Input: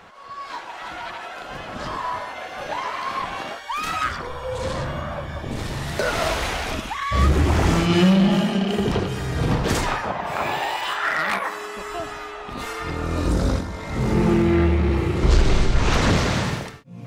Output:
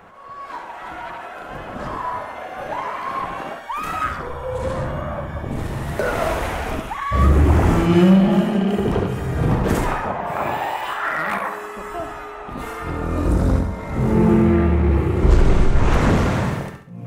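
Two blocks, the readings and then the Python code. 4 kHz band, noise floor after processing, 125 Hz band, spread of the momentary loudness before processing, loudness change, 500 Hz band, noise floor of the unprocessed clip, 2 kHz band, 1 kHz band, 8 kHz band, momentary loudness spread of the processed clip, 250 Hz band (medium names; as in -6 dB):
-7.0 dB, -35 dBFS, +3.0 dB, 14 LU, +2.5 dB, +2.5 dB, -37 dBFS, -1.0 dB, +1.5 dB, -5.0 dB, 17 LU, +3.0 dB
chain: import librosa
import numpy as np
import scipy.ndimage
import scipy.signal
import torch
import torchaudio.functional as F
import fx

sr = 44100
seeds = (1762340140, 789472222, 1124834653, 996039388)

y = fx.peak_eq(x, sr, hz=4600.0, db=-13.0, octaves=1.8)
y = fx.room_flutter(y, sr, wall_m=11.8, rt60_s=0.48)
y = F.gain(torch.from_numpy(y), 2.5).numpy()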